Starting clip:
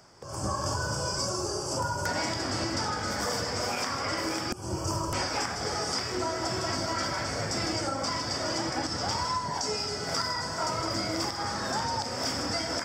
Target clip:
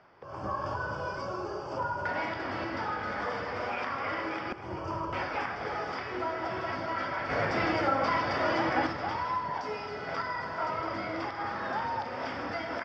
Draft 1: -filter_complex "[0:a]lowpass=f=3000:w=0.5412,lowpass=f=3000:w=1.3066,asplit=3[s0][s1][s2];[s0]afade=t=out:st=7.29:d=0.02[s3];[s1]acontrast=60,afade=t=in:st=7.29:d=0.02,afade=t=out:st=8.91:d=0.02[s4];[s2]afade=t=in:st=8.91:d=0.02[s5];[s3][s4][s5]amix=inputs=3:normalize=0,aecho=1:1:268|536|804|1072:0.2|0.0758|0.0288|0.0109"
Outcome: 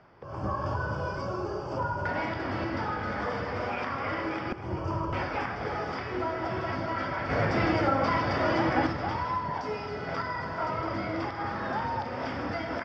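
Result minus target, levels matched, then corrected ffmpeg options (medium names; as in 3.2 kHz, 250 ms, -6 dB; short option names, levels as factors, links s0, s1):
250 Hz band +3.0 dB
-filter_complex "[0:a]lowpass=f=3000:w=0.5412,lowpass=f=3000:w=1.3066,lowshelf=f=290:g=-9.5,asplit=3[s0][s1][s2];[s0]afade=t=out:st=7.29:d=0.02[s3];[s1]acontrast=60,afade=t=in:st=7.29:d=0.02,afade=t=out:st=8.91:d=0.02[s4];[s2]afade=t=in:st=8.91:d=0.02[s5];[s3][s4][s5]amix=inputs=3:normalize=0,aecho=1:1:268|536|804|1072:0.2|0.0758|0.0288|0.0109"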